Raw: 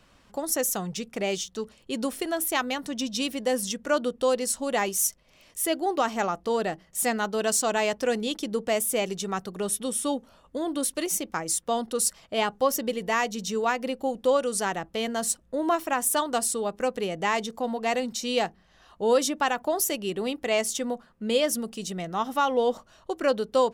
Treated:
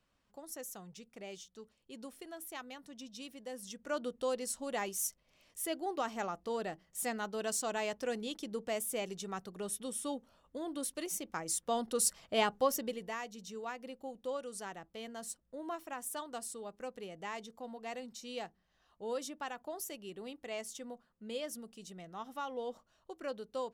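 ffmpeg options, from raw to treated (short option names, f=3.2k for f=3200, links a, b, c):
-af "volume=-4dB,afade=t=in:st=3.58:d=0.46:silence=0.398107,afade=t=in:st=11.16:d=1.2:silence=0.446684,afade=t=out:st=12.36:d=0.82:silence=0.237137"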